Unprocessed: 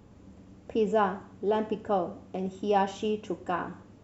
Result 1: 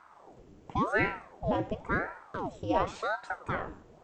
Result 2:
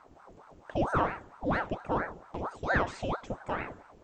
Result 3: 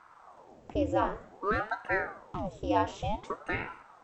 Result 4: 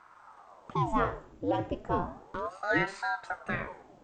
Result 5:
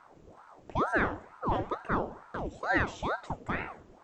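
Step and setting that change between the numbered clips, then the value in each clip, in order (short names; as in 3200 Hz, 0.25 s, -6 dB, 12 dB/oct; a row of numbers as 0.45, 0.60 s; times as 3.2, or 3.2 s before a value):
ring modulator with a swept carrier, at: 0.93, 4.4, 0.54, 0.33, 2.2 Hz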